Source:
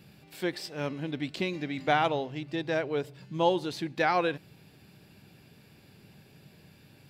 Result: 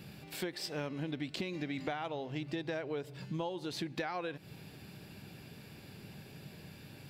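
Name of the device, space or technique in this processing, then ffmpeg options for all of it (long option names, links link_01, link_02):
serial compression, peaks first: -af "acompressor=threshold=-35dB:ratio=10,acompressor=threshold=-45dB:ratio=1.5,volume=4.5dB"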